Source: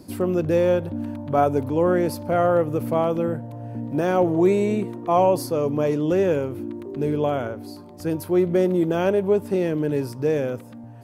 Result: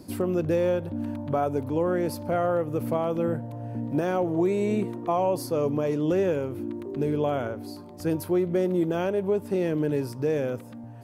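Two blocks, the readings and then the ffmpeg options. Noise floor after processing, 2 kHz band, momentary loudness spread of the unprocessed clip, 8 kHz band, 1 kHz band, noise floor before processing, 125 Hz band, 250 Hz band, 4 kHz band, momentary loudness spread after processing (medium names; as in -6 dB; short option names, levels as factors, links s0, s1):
-42 dBFS, -4.5 dB, 12 LU, -3.5 dB, -6.0 dB, -41 dBFS, -3.5 dB, -3.5 dB, -4.0 dB, 8 LU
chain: -af "alimiter=limit=0.188:level=0:latency=1:release=378,volume=0.891"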